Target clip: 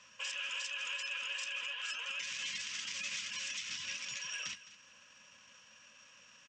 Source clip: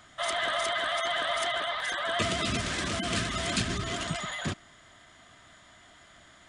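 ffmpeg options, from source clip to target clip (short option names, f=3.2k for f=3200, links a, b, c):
-filter_complex "[0:a]flanger=delay=7.5:depth=6:regen=-65:speed=0.34:shape=sinusoidal,highpass=130,equalizer=f=260:t=q:w=4:g=5,equalizer=f=470:t=q:w=4:g=-6,equalizer=f=940:t=q:w=4:g=-6,equalizer=f=1.7k:t=q:w=4:g=-6,equalizer=f=5.1k:t=q:w=4:g=-8,lowpass=f=8.4k:w=0.5412,lowpass=f=8.4k:w=1.3066,asetrate=36028,aresample=44100,atempo=1.22405,acrossover=split=1600[a][b];[a]acompressor=threshold=-52dB:ratio=5[c];[c][b]amix=inputs=2:normalize=0,tiltshelf=f=1.5k:g=-9.5,asplit=2[d][e];[e]aecho=0:1:212:0.15[f];[d][f]amix=inputs=2:normalize=0,alimiter=level_in=6dB:limit=-24dB:level=0:latency=1:release=125,volume=-6dB,bandreject=f=870:w=22"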